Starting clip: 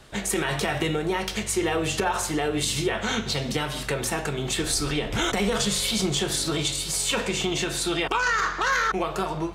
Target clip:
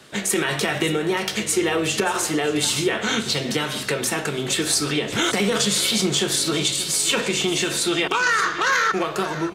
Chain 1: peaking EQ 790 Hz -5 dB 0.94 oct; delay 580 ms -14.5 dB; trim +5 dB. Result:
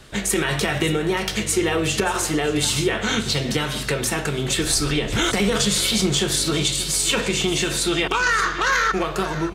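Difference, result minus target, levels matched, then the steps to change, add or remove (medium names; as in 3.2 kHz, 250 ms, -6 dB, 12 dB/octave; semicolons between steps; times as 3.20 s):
125 Hz band +4.5 dB
add first: high-pass 170 Hz 12 dB/octave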